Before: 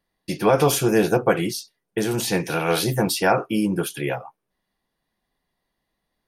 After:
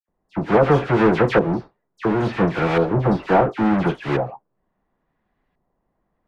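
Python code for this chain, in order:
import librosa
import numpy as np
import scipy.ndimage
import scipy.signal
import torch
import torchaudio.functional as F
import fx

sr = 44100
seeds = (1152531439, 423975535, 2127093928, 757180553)

y = fx.halfwave_hold(x, sr)
y = fx.rider(y, sr, range_db=3, speed_s=2.0)
y = fx.dispersion(y, sr, late='lows', ms=84.0, hz=2200.0)
y = fx.filter_lfo_lowpass(y, sr, shape='saw_up', hz=0.72, low_hz=850.0, high_hz=2200.0, q=0.95)
y = y * 10.0 ** (-1.5 / 20.0)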